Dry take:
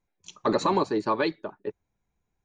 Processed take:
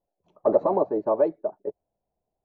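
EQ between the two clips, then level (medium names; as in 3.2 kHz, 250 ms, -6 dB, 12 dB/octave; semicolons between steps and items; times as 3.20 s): resonant low-pass 640 Hz, resonance Q 4.9; bass shelf 260 Hz -7 dB; -1.5 dB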